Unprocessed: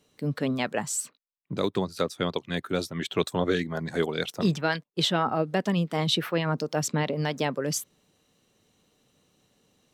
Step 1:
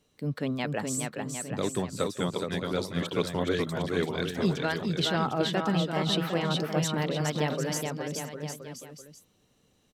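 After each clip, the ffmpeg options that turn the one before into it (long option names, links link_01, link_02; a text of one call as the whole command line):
ffmpeg -i in.wav -filter_complex "[0:a]lowshelf=frequency=69:gain=10.5,asplit=2[link_01][link_02];[link_02]aecho=0:1:420|756|1025|1240|1412:0.631|0.398|0.251|0.158|0.1[link_03];[link_01][link_03]amix=inputs=2:normalize=0,volume=-4dB" out.wav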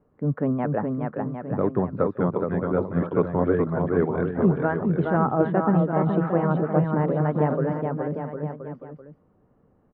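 ffmpeg -i in.wav -af "lowpass=frequency=1400:width=0.5412,lowpass=frequency=1400:width=1.3066,aemphasis=mode=reproduction:type=50fm,volume=6.5dB" out.wav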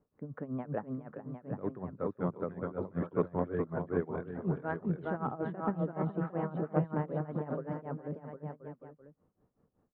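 ffmpeg -i in.wav -af "tremolo=f=5.3:d=0.87,aeval=exprs='0.422*(cos(1*acos(clip(val(0)/0.422,-1,1)))-cos(1*PI/2))+0.0299*(cos(3*acos(clip(val(0)/0.422,-1,1)))-cos(3*PI/2))':channel_layout=same,volume=-6.5dB" out.wav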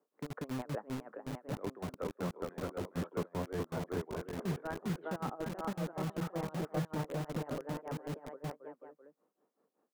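ffmpeg -i in.wav -filter_complex "[0:a]acrossover=split=130[link_01][link_02];[link_02]acompressor=threshold=-37dB:ratio=2.5[link_03];[link_01][link_03]amix=inputs=2:normalize=0,acrossover=split=270[link_04][link_05];[link_04]acrusher=bits=6:mix=0:aa=0.000001[link_06];[link_06][link_05]amix=inputs=2:normalize=0" out.wav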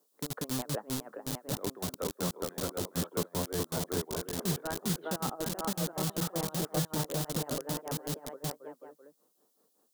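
ffmpeg -i in.wav -af "aexciter=amount=5:drive=4.1:freq=3300,volume=3dB" out.wav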